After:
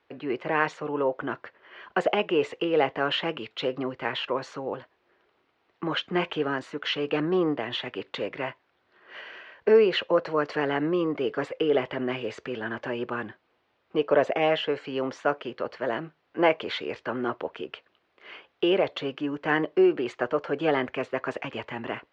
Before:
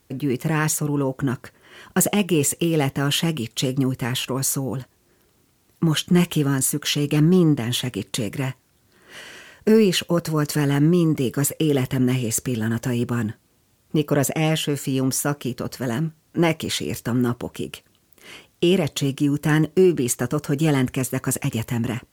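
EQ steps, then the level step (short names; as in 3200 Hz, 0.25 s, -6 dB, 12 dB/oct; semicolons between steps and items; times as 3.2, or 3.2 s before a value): LPF 4700 Hz 24 dB/oct; three-band isolator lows -21 dB, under 390 Hz, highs -17 dB, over 3100 Hz; dynamic EQ 560 Hz, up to +5 dB, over -37 dBFS, Q 1.2; 0.0 dB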